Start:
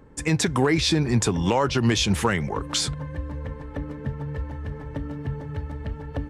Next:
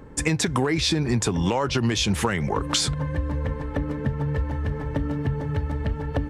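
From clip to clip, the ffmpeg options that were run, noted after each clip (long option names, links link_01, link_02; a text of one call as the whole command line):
ffmpeg -i in.wav -af "acompressor=threshold=-26dB:ratio=6,volume=6.5dB" out.wav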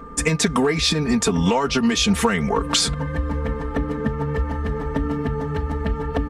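ffmpeg -i in.wav -af "aeval=exprs='val(0)+0.00794*sin(2*PI*1200*n/s)':channel_layout=same,aecho=1:1:4.4:0.91,volume=1.5dB" out.wav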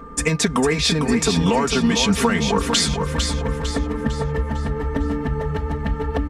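ffmpeg -i in.wav -af "aecho=1:1:452|904|1356|1808|2260:0.473|0.213|0.0958|0.0431|0.0194" out.wav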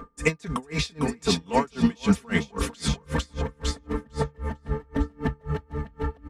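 ffmpeg -i in.wav -af "aeval=exprs='val(0)*pow(10,-34*(0.5-0.5*cos(2*PI*3.8*n/s))/20)':channel_layout=same" out.wav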